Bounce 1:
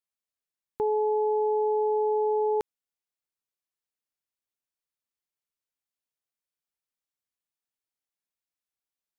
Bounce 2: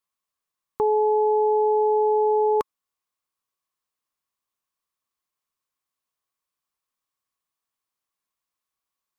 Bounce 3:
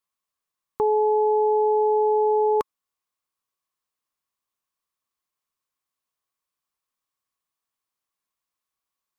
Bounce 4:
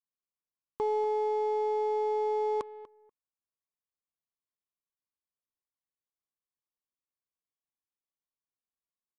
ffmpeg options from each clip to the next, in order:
-af "equalizer=f=1.1k:t=o:w=0.27:g=14,volume=4.5dB"
-af anull
-af "aecho=1:1:242|484:0.158|0.0269,adynamicsmooth=sensitivity=6.5:basefreq=870,aresample=22050,aresample=44100,volume=-8.5dB"

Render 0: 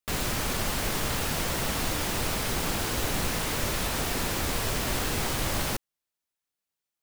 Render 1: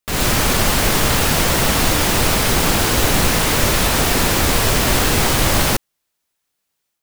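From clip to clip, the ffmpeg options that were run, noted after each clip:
-af "dynaudnorm=f=110:g=3:m=6.5dB,volume=6.5dB"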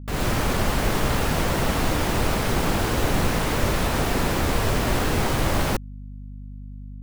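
-af "aeval=exprs='val(0)+0.0282*(sin(2*PI*50*n/s)+sin(2*PI*2*50*n/s)/2+sin(2*PI*3*50*n/s)/3+sin(2*PI*4*50*n/s)/4+sin(2*PI*5*50*n/s)/5)':c=same,highshelf=f=2.4k:g=-10,volume=-4.5dB"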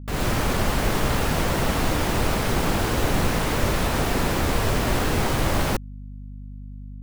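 -af anull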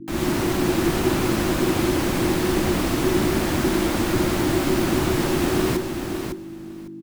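-filter_complex "[0:a]asplit=2[a][b];[b]aecho=0:1:555|1110|1665:0.447|0.0715|0.0114[c];[a][c]amix=inputs=2:normalize=0,afreqshift=-380"

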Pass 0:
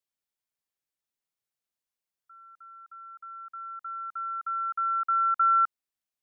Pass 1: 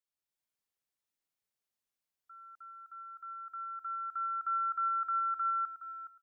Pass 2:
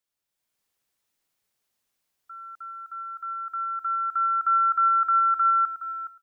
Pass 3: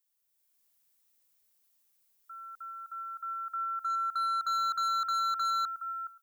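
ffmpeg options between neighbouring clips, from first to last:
-filter_complex "[0:a]alimiter=level_in=2.5dB:limit=-24dB:level=0:latency=1:release=23,volume=-2.5dB,dynaudnorm=f=110:g=5:m=5.5dB,asplit=2[a][b];[b]adelay=418,lowpass=f=1.2k:p=1,volume=-9dB,asplit=2[c][d];[d]adelay=418,lowpass=f=1.2k:p=1,volume=0.28,asplit=2[e][f];[f]adelay=418,lowpass=f=1.2k:p=1,volume=0.28[g];[a][c][e][g]amix=inputs=4:normalize=0,volume=-6.5dB"
-af "dynaudnorm=f=320:g=3:m=5dB,volume=6.5dB"
-af "aemphasis=mode=production:type=50kf,asoftclip=type=hard:threshold=-23.5dB,volume=-5dB"

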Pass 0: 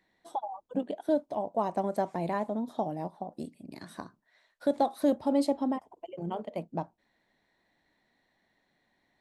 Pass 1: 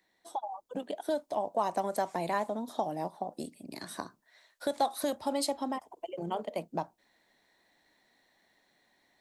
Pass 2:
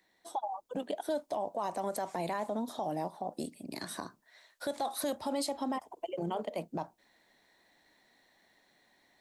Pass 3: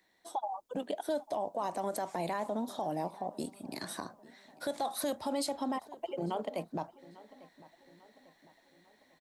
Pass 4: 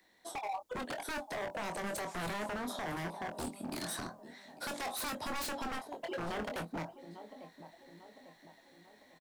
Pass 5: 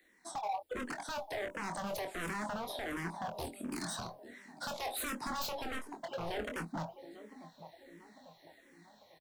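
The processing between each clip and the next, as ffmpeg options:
-filter_complex "[0:a]acrossover=split=120|820[a][b][c];[b]acompressor=threshold=-35dB:ratio=6[d];[a][d][c]amix=inputs=3:normalize=0,bass=f=250:g=-7,treble=f=4k:g=7,dynaudnorm=f=460:g=3:m=5dB,volume=-1.5dB"
-af "alimiter=level_in=3dB:limit=-24dB:level=0:latency=1:release=42,volume=-3dB,volume=2dB"
-filter_complex "[0:a]asplit=2[a][b];[b]adelay=847,lowpass=f=3.3k:p=1,volume=-20dB,asplit=2[c][d];[d]adelay=847,lowpass=f=3.3k:p=1,volume=0.5,asplit=2[e][f];[f]adelay=847,lowpass=f=3.3k:p=1,volume=0.5,asplit=2[g][h];[h]adelay=847,lowpass=f=3.3k:p=1,volume=0.5[i];[a][c][e][g][i]amix=inputs=5:normalize=0"
-filter_complex "[0:a]acrossover=split=110|610|2100[a][b][c][d];[c]alimiter=level_in=13.5dB:limit=-24dB:level=0:latency=1:release=48,volume=-13.5dB[e];[a][b][e][d]amix=inputs=4:normalize=0,aeval=exprs='0.015*(abs(mod(val(0)/0.015+3,4)-2)-1)':c=same,asplit=2[f][g];[g]adelay=24,volume=-7dB[h];[f][h]amix=inputs=2:normalize=0,volume=3dB"
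-filter_complex "[0:a]asplit=2[a][b];[b]afreqshift=-1.4[c];[a][c]amix=inputs=2:normalize=1,volume=2.5dB"

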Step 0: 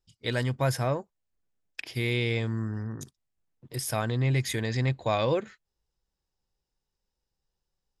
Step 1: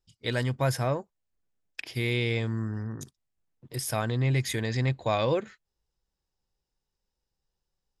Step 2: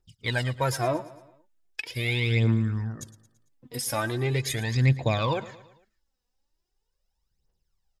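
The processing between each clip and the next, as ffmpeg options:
-af anull
-af "aphaser=in_gain=1:out_gain=1:delay=4.2:decay=0.66:speed=0.4:type=triangular,aecho=1:1:112|224|336|448:0.133|0.068|0.0347|0.0177"

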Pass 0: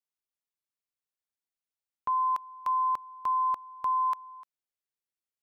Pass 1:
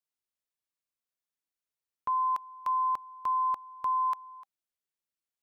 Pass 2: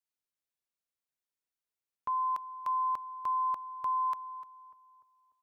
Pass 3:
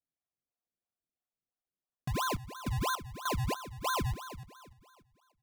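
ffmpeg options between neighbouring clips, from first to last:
-af "bandreject=f=790:w=16,volume=-1dB"
-filter_complex "[0:a]asplit=2[a][b];[b]adelay=296,lowpass=f=1.3k:p=1,volume=-16dB,asplit=2[c][d];[d]adelay=296,lowpass=f=1.3k:p=1,volume=0.53,asplit=2[e][f];[f]adelay=296,lowpass=f=1.3k:p=1,volume=0.53,asplit=2[g][h];[h]adelay=296,lowpass=f=1.3k:p=1,volume=0.53,asplit=2[i][j];[j]adelay=296,lowpass=f=1.3k:p=1,volume=0.53[k];[a][c][e][g][i][k]amix=inputs=6:normalize=0,volume=-3dB"
-filter_complex "[0:a]asplit=3[a][b][c];[a]bandpass=f=730:t=q:w=8,volume=0dB[d];[b]bandpass=f=1.09k:t=q:w=8,volume=-6dB[e];[c]bandpass=f=2.44k:t=q:w=8,volume=-9dB[f];[d][e][f]amix=inputs=3:normalize=0,acrusher=samples=33:mix=1:aa=0.000001:lfo=1:lforange=33:lforate=3,volume=8.5dB"

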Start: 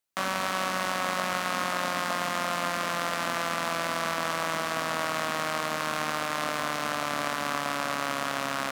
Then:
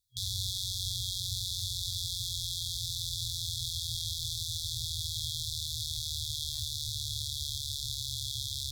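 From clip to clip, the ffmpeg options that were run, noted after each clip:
-filter_complex "[0:a]afftfilt=real='re*(1-between(b*sr/4096,120,3300))':imag='im*(1-between(b*sr/4096,120,3300))':win_size=4096:overlap=0.75,bass=f=250:g=9,treble=f=4k:g=-9,asplit=2[a][b];[b]alimiter=level_in=6dB:limit=-24dB:level=0:latency=1,volume=-6dB,volume=0dB[c];[a][c]amix=inputs=2:normalize=0,volume=5dB"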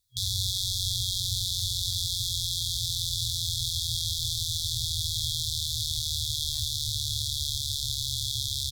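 -filter_complex "[0:a]asplit=4[a][b][c][d];[b]adelay=323,afreqshift=-110,volume=-14dB[e];[c]adelay=646,afreqshift=-220,volume=-23.4dB[f];[d]adelay=969,afreqshift=-330,volume=-32.7dB[g];[a][e][f][g]amix=inputs=4:normalize=0,volume=5.5dB"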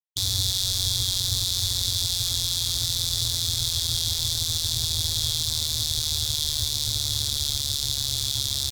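-af "aeval=exprs='sgn(val(0))*max(abs(val(0))-0.00944,0)':c=same,volume=6dB"

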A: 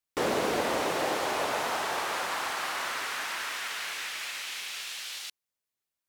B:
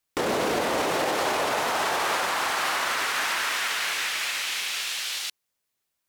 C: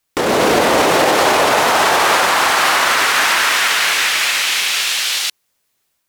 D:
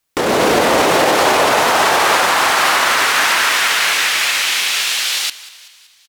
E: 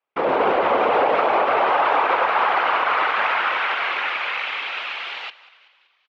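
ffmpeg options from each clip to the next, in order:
-af "alimiter=level_in=0.5dB:limit=-24dB:level=0:latency=1:release=36,volume=-0.5dB,volume=8dB"
-af "dynaudnorm=f=220:g=3:m=4dB,volume=8.5dB"
-filter_complex "[0:a]asplit=6[a][b][c][d][e][f];[b]adelay=190,afreqshift=71,volume=-18dB[g];[c]adelay=380,afreqshift=142,volume=-23dB[h];[d]adelay=570,afreqshift=213,volume=-28.1dB[i];[e]adelay=760,afreqshift=284,volume=-33.1dB[j];[f]adelay=950,afreqshift=355,volume=-38.1dB[k];[a][g][h][i][j][k]amix=inputs=6:normalize=0"
-af "highpass=390,equalizer=f=510:t=q:w=4:g=4,equalizer=f=820:t=q:w=4:g=4,equalizer=f=1.2k:t=q:w=4:g=3,equalizer=f=1.8k:t=q:w=4:g=-5,lowpass=f=2.6k:w=0.5412,lowpass=f=2.6k:w=1.3066,afftfilt=real='hypot(re,im)*cos(2*PI*random(0))':imag='hypot(re,im)*sin(2*PI*random(1))':win_size=512:overlap=0.75,alimiter=level_in=9dB:limit=-1dB:release=50:level=0:latency=1,volume=-8dB"

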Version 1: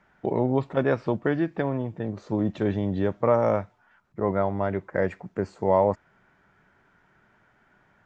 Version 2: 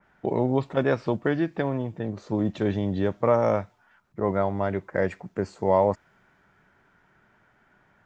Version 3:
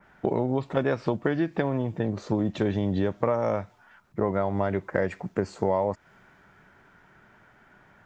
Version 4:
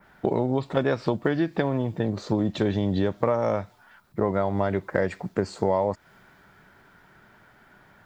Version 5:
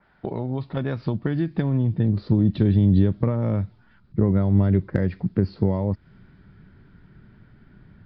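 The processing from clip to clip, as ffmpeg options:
-af "adynamicequalizer=threshold=0.00708:dfrequency=2900:dqfactor=0.7:tfrequency=2900:tqfactor=0.7:attack=5:release=100:ratio=0.375:range=3:mode=boostabove:tftype=highshelf"
-af "acompressor=threshold=-27dB:ratio=5,volume=5.5dB"
-af "aexciter=amount=2.3:drive=1.2:freq=3.6k,volume=1.5dB"
-af "aresample=11025,aresample=44100,asubboost=boost=11.5:cutoff=230,volume=-5.5dB"

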